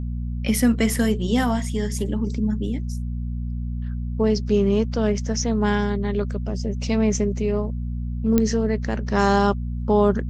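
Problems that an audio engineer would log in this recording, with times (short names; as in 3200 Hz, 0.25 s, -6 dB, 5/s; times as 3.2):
hum 60 Hz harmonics 4 -27 dBFS
8.38 pop -6 dBFS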